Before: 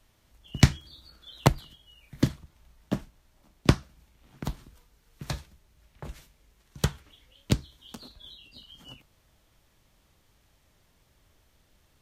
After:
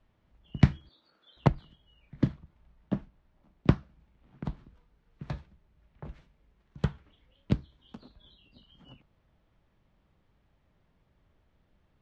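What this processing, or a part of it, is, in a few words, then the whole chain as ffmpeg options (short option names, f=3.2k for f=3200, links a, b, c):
phone in a pocket: -filter_complex "[0:a]lowpass=3.5k,equalizer=f=180:t=o:w=0.59:g=4.5,highshelf=f=2.2k:g=-9,asettb=1/sr,asplit=3[a][b][c];[a]atrim=end=0.894[d];[b]atrim=start=0.89:end=1.37,asetpts=PTS-STARTPTS,afade=t=in:d=0.004:c=qsin,afade=t=out:st=0.476:d=0.004:c=qsin,highpass=360[e];[c]atrim=start=1.366[f];[d][e]acrossfade=d=0.004:c1=hsin:c2=qsin[g];[g][f]acrossfade=d=0.004:c1=qsin:c2=hsin,volume=-3.5dB"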